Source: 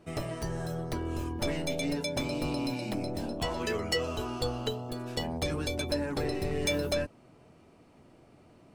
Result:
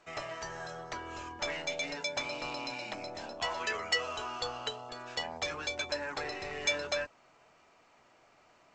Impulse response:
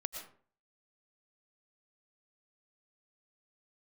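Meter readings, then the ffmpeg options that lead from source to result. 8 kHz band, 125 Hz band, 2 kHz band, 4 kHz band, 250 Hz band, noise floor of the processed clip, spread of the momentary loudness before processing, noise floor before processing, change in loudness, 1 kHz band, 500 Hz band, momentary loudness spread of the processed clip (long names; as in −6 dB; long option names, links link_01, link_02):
−1.5 dB, −17.0 dB, +3.5 dB, 0.0 dB, −15.0 dB, −64 dBFS, 5 LU, −59 dBFS, −3.0 dB, +0.5 dB, −6.0 dB, 10 LU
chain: -filter_complex "[0:a]acrossover=split=590 2200:gain=0.158 1 0.158[link_01][link_02][link_03];[link_01][link_02][link_03]amix=inputs=3:normalize=0,crystalizer=i=8.5:c=0,volume=-1.5dB" -ar 16000 -c:a g722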